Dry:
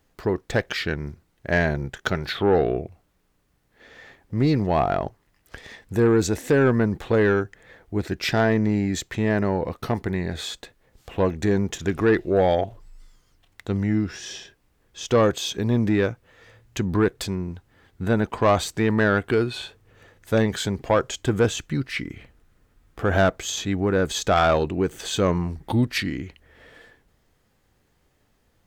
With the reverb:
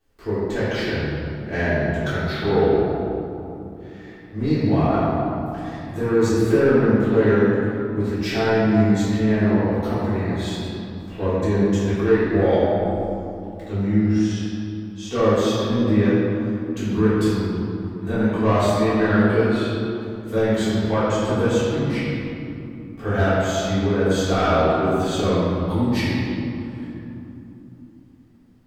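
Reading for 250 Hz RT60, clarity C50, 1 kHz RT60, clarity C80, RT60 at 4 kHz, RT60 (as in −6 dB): 4.3 s, −4.0 dB, 2.8 s, −2.0 dB, 1.5 s, 3.0 s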